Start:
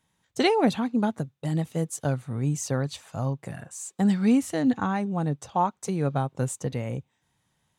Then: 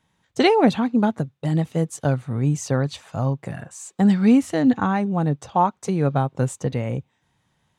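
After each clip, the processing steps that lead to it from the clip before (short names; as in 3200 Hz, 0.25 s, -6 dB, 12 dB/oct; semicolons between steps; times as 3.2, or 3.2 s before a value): high shelf 7200 Hz -11.5 dB; gain +5.5 dB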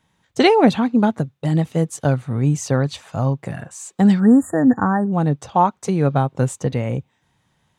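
spectral delete 4.2–5.12, 1900–6800 Hz; gain +3 dB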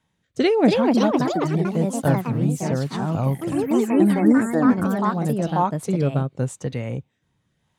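rotary speaker horn 0.85 Hz; echoes that change speed 0.346 s, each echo +3 st, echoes 3; gain -3 dB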